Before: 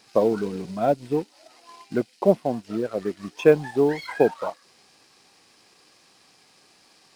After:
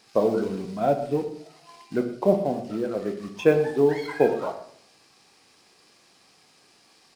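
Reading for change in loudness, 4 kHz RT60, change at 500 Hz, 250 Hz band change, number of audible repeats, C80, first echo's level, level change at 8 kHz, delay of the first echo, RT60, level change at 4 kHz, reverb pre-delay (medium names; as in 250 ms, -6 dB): -1.0 dB, 0.40 s, -1.0 dB, -0.5 dB, 1, 11.5 dB, -15.5 dB, no reading, 118 ms, 0.60 s, -1.0 dB, 12 ms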